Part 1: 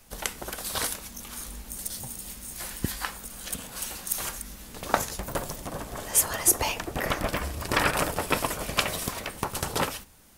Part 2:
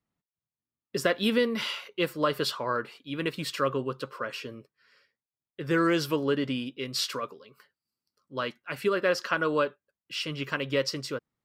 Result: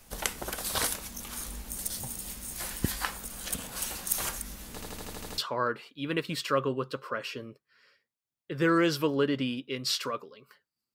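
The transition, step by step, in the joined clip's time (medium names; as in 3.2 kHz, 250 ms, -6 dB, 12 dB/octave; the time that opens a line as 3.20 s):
part 1
4.74 s: stutter in place 0.08 s, 8 plays
5.38 s: go over to part 2 from 2.47 s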